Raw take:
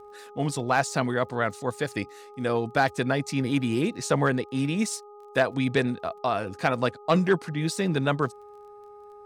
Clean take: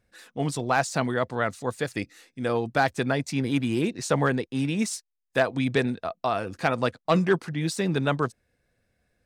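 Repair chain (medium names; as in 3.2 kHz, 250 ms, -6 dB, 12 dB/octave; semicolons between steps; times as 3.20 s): de-click; de-hum 413.3 Hz, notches 3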